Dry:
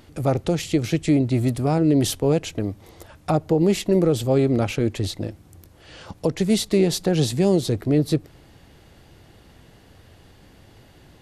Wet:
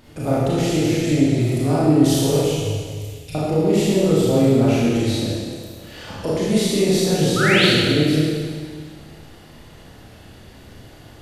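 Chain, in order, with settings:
0:02.36–0:03.35: elliptic band-stop filter 110–2,500 Hz
in parallel at +1 dB: downward compressor, threshold −28 dBFS, peak gain reduction 13.5 dB
0:07.36–0:07.65: on the sum: sound drawn into the spectrogram rise 1,200–4,700 Hz −17 dBFS
four-comb reverb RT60 1.9 s, combs from 26 ms, DRR −8.5 dB
level −8 dB

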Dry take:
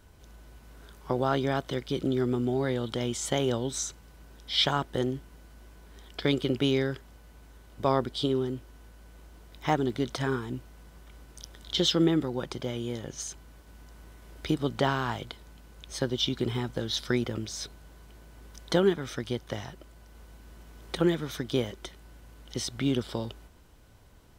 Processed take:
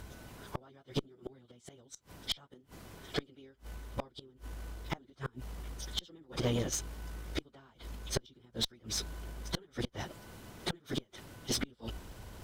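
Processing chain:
reversed playback
upward compression, threshold −44 dBFS
reversed playback
time stretch by phase vocoder 0.51×
gate with flip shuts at −25 dBFS, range −34 dB
harmonic generator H 5 −20 dB, 6 −18 dB, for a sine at −22.5 dBFS
level +3.5 dB

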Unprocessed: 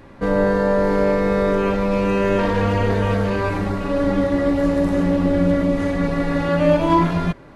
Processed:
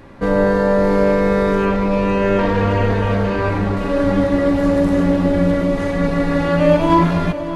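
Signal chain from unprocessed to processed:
0:01.65–0:03.77: high-shelf EQ 6,200 Hz −9.5 dB
feedback delay with all-pass diffusion 597 ms, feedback 48%, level −12 dB
level +2.5 dB

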